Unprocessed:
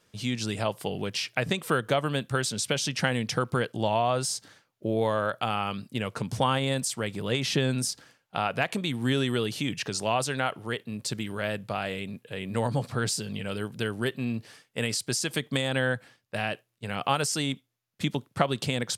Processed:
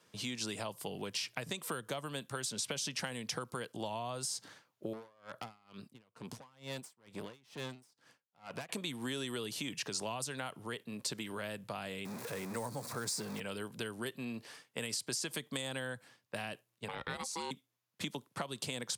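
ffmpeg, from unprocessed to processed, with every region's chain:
-filter_complex "[0:a]asettb=1/sr,asplit=3[a][b][c];[a]atrim=end=4.934[d];[b]atrim=start=4.93:end=8.69,asetpts=PTS-STARTPTS,afade=t=in:d=0.004:c=qsin,afade=t=out:st=3.756:d=0.004:c=qsin,aeval=exprs='(tanh(28.2*val(0)+0.75)-tanh(0.75))/28.2':c=same,aeval=exprs='val(0)*pow(10,-33*(0.5-0.5*cos(2*PI*2.2*n/s))/20)':c=same[e];[c]atrim=start=8.686[f];[d][e]acrossfade=d=0.004:c1=hsin:c2=qsin[g];[g][f]acrossfade=d=0.004:c1=qsin:c2=hsin,asettb=1/sr,asplit=3[h][i][j];[h]atrim=end=12.054[k];[i]atrim=start=12.05:end=13.4,asetpts=PTS-STARTPTS,afade=t=in:d=0.004:c=qsin,afade=t=out:st=1.346:d=0.004:c=qsin,aeval=exprs='val(0)+0.5*0.0188*sgn(val(0))':c=same,equalizer=f=3k:w=3.7:g=-12[l];[j]atrim=start=13.396[m];[k][l]acrossfade=d=0.004:c1=hsin:c2=qsin[n];[n][m]acrossfade=d=0.004:c1=qsin:c2=hsin,asettb=1/sr,asplit=3[o][p][q];[o]atrim=end=16.884[r];[p]atrim=start=16.88:end=17.51,asetpts=PTS-STARTPTS,afade=t=in:d=0.004:c=qsin,afade=t=out:st=0.626:d=0.004:c=qsin,lowpass=f=3.9k:p=1,aeval=exprs='val(0)*sin(2*PI*660*n/s)':c=same[s];[q]atrim=start=17.506[t];[r][s]acrossfade=d=0.004:c1=hsin:c2=qsin[u];[u][t]acrossfade=d=0.004:c1=qsin:c2=hsin,highpass=120,equalizer=f=1k:t=o:w=0.32:g=5,acrossover=split=270|4900[v][w][x];[v]acompressor=threshold=-47dB:ratio=4[y];[w]acompressor=threshold=-39dB:ratio=4[z];[x]acompressor=threshold=-36dB:ratio=4[aa];[y][z][aa]amix=inputs=3:normalize=0,volume=-1.5dB"

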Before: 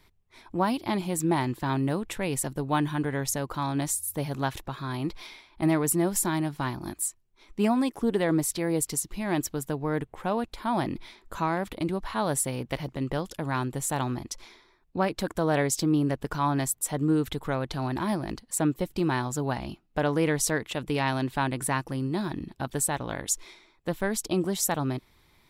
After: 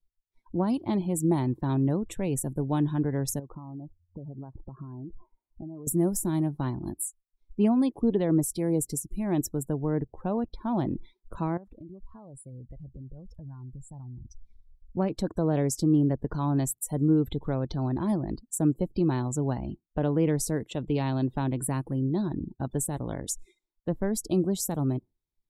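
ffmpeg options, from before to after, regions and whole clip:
-filter_complex "[0:a]asettb=1/sr,asplit=3[a][b][c];[a]atrim=end=3.394[d];[b]atrim=start=3.39:end=5.87,asetpts=PTS-STARTPTS,afade=t=in:d=0.004:c=qsin,afade=t=out:st=2.476:d=0.004:c=qsin,lowpass=f=1.5k:w=0.5412,lowpass=f=1.5k:w=1.3066,acompressor=threshold=-37dB:ratio=12:attack=3.2:release=140:knee=1:detection=peak[e];[c]atrim=start=5.866[f];[d][e]acrossfade=d=0.004:c1=hsin:c2=qsin[g];[g][f]acrossfade=d=0.004:c1=qsin:c2=hsin,asettb=1/sr,asplit=3[h][i][j];[h]atrim=end=11.574[k];[i]atrim=start=11.57:end=14.97,asetpts=PTS-STARTPTS,afade=t=in:d=0.004:c=qsin,afade=t=out:st=3.396:d=0.004:c=qsin,asubboost=boost=8:cutoff=120,acompressor=threshold=-42dB:ratio=8:attack=3.2:release=140:knee=1:detection=peak[l];[j]atrim=start=14.966[m];[k][l]acrossfade=d=0.004:c1=hsin:c2=qsin[n];[n][m]acrossfade=d=0.004:c1=qsin:c2=hsin,afftdn=nr=32:nf=-41,equalizer=f=1.8k:w=0.49:g=-14,acrossover=split=470[o][p];[p]acompressor=threshold=-33dB:ratio=6[q];[o][q]amix=inputs=2:normalize=0,volume=3.5dB"

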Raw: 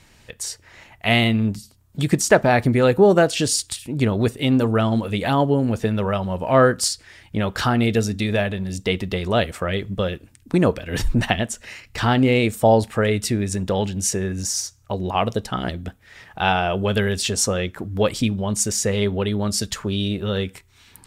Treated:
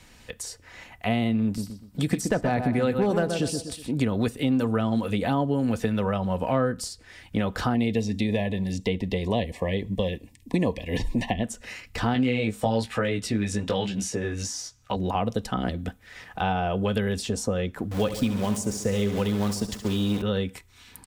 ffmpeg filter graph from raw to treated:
-filter_complex "[0:a]asettb=1/sr,asplit=3[a][b][c];[a]atrim=end=1.454[d];[b]atrim=start=1.45:end=3.91,asetpts=PTS-STARTPTS,afade=t=in:d=0.004:c=qsin,afade=t=out:st=2.456:d=0.004:c=qsin,asoftclip=type=hard:threshold=-6.5dB,bandreject=f=6.8k:w=19,asplit=2[e][f];[f]adelay=123,lowpass=f=2.7k:p=1,volume=-7.5dB,asplit=2[g][h];[h]adelay=123,lowpass=f=2.7k:p=1,volume=0.36,asplit=2[i][j];[j]adelay=123,lowpass=f=2.7k:p=1,volume=0.36,asplit=2[k][l];[l]adelay=123,lowpass=f=2.7k:p=1,volume=0.36[m];[e][g][i][k][m]amix=inputs=5:normalize=0,atrim=end_sample=108486[n];[c]atrim=start=3.906[o];[d][n]acrossfade=d=0.004:c1=hsin:c2=qsin[p];[p][o]acrossfade=d=0.004:c1=qsin:c2=hsin,asettb=1/sr,asplit=3[q][r][s];[q]atrim=end=7.744[t];[r]atrim=start=7.74:end=11.44,asetpts=PTS-STARTPTS,afade=t=in:d=0.004:c=qsin,afade=t=out:st=3.696:d=0.004:c=qsin,acrossover=split=5700[u][v];[v]acompressor=threshold=-48dB:ratio=4:attack=1:release=60[w];[u][w]amix=inputs=2:normalize=0,asuperstop=centerf=1400:order=12:qfactor=2.4[x];[s]atrim=start=11.436[y];[t][x]acrossfade=d=0.004:c1=hsin:c2=qsin[z];[z][y]acrossfade=d=0.004:c1=qsin:c2=hsin,asettb=1/sr,asplit=3[aa][ab][ac];[aa]atrim=end=12.144[ad];[ab]atrim=start=12.14:end=14.96,asetpts=PTS-STARTPTS,afade=t=in:d=0.004:c=qsin,afade=t=out:st=2.816:d=0.004:c=qsin,equalizer=f=2.9k:w=0.39:g=12,flanger=delay=15.5:depth=3.8:speed=1.1[ae];[ac]atrim=start=14.956[af];[ad][ae]acrossfade=d=0.004:c1=hsin:c2=qsin[ag];[ag][af]acrossfade=d=0.004:c1=qsin:c2=hsin,asettb=1/sr,asplit=3[ah][ai][aj];[ah]atrim=end=17.914[ak];[ai]atrim=start=17.91:end=20.22,asetpts=PTS-STARTPTS,afade=t=in:d=0.004:c=qsin,afade=t=out:st=2.306:d=0.004:c=qsin,aeval=exprs='val(0)*gte(abs(val(0)),0.0335)':c=same,aecho=1:1:69|138|207|276|345|414|483:0.251|0.148|0.0874|0.0516|0.0304|0.018|0.0106,atrim=end_sample=101871[al];[aj]atrim=start=20.216[am];[ak][al]acrossfade=d=0.004:c1=hsin:c2=qsin[an];[an][am]acrossfade=d=0.004:c1=qsin:c2=hsin,aecho=1:1:4:0.32,acrossover=split=210|930[ao][ap][aq];[ao]acompressor=threshold=-27dB:ratio=4[ar];[ap]acompressor=threshold=-26dB:ratio=4[as];[aq]acompressor=threshold=-35dB:ratio=4[at];[ar][as][at]amix=inputs=3:normalize=0"

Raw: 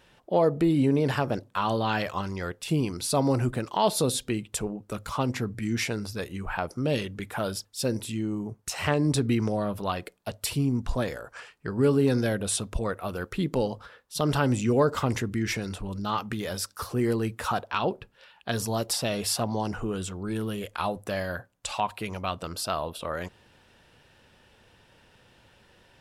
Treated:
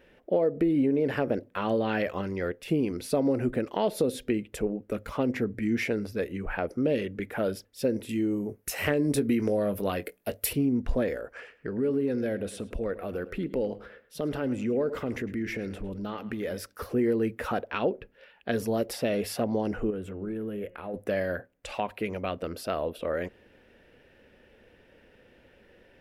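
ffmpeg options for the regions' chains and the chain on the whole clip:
-filter_complex "[0:a]asettb=1/sr,asplit=3[a][b][c];[a]atrim=end=8.094[d];[b]atrim=start=8.09:end=10.53,asetpts=PTS-STARTPTS,afade=t=in:d=0.004:c=qsin,afade=t=out:st=2.436:d=0.004:c=qsin,equalizer=f=13k:w=0.42:g=14.5,asplit=2[e][f];[f]adelay=21,volume=-12dB[g];[e][g]amix=inputs=2:normalize=0,atrim=end_sample=107604[h];[c]atrim=start=10.526[i];[d][h]acrossfade=d=0.004:c1=hsin:c2=qsin[j];[j][i]acrossfade=d=0.004:c1=qsin:c2=hsin,asettb=1/sr,asplit=3[k][l][m];[k]atrim=end=11.354[n];[l]atrim=start=11.35:end=16.6,asetpts=PTS-STARTPTS,afade=t=in:d=0.004:c=qsin,afade=t=out:st=5.246:d=0.004:c=qsin,acompressor=threshold=-33dB:ratio=2:attack=3.2:release=140:knee=1:detection=peak,asplit=2[o][p];[p]adelay=107,lowpass=f=4.8k:p=1,volume=-16dB,asplit=2[q][r];[r]adelay=107,lowpass=f=4.8k:p=1,volume=0.29,asplit=2[s][t];[t]adelay=107,lowpass=f=4.8k:p=1,volume=0.29[u];[o][q][s][u]amix=inputs=4:normalize=0,atrim=end_sample=231525[v];[m]atrim=start=16.596[w];[n][v]acrossfade=d=0.004:c1=hsin:c2=qsin[x];[x][w]acrossfade=d=0.004:c1=qsin:c2=hsin,asettb=1/sr,asplit=3[y][z][aa];[y]atrim=end=19.904[ab];[z]atrim=start=19.9:end=20.94,asetpts=PTS-STARTPTS,afade=t=in:d=0.004:c=qsin,afade=t=out:st=1.036:d=0.004:c=qsin,equalizer=f=5.2k:t=o:w=1.6:g=-12,acompressor=threshold=-33dB:ratio=5:attack=3.2:release=140:knee=1:detection=peak,bandreject=f=179.9:t=h:w=4,bandreject=f=359.8:t=h:w=4,bandreject=f=539.7:t=h:w=4,bandreject=f=719.6:t=h:w=4,bandreject=f=899.5:t=h:w=4,bandreject=f=1.0794k:t=h:w=4,bandreject=f=1.2593k:t=h:w=4,bandreject=f=1.4392k:t=h:w=4,bandreject=f=1.6191k:t=h:w=4,bandreject=f=1.799k:t=h:w=4,bandreject=f=1.9789k:t=h:w=4,bandreject=f=2.1588k:t=h:w=4,bandreject=f=2.3387k:t=h:w=4,bandreject=f=2.5186k:t=h:w=4,bandreject=f=2.6985k:t=h:w=4,bandreject=f=2.8784k:t=h:w=4[ac];[aa]atrim=start=20.936[ad];[ab][ac]acrossfade=d=0.004:c1=hsin:c2=qsin[ae];[ae][ad]acrossfade=d=0.004:c1=qsin:c2=hsin,equalizer=f=125:t=o:w=1:g=-6,equalizer=f=250:t=o:w=1:g=6,equalizer=f=500:t=o:w=1:g=9,equalizer=f=1k:t=o:w=1:g=-8,equalizer=f=2k:t=o:w=1:g=7,equalizer=f=4k:t=o:w=1:g=-6,equalizer=f=8k:t=o:w=1:g=-10,acompressor=threshold=-19dB:ratio=6,lowshelf=f=71:g=5.5,volume=-2.5dB"

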